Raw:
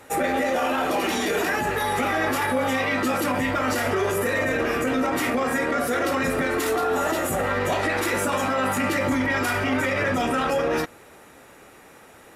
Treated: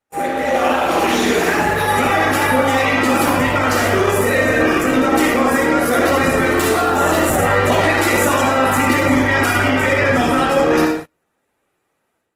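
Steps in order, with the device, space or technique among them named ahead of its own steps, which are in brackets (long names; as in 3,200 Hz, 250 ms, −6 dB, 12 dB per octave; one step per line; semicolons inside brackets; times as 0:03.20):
speakerphone in a meeting room (convolution reverb RT60 0.55 s, pre-delay 51 ms, DRR 1.5 dB; automatic gain control gain up to 10 dB; noise gate −24 dBFS, range −32 dB; level −1 dB; Opus 16 kbit/s 48,000 Hz)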